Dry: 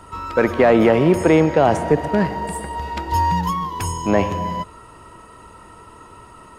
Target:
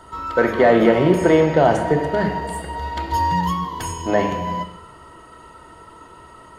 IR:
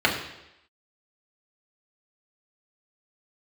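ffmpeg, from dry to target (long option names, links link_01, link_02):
-filter_complex "[0:a]asplit=2[link_01][link_02];[1:a]atrim=start_sample=2205,highshelf=frequency=2600:gain=8[link_03];[link_02][link_03]afir=irnorm=-1:irlink=0,volume=-17.5dB[link_04];[link_01][link_04]amix=inputs=2:normalize=0,volume=-4.5dB"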